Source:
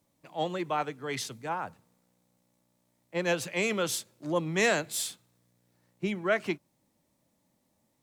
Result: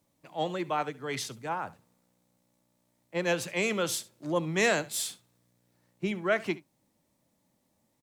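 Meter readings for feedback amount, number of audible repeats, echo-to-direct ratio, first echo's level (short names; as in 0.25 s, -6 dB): no steady repeat, 1, -19.5 dB, -19.5 dB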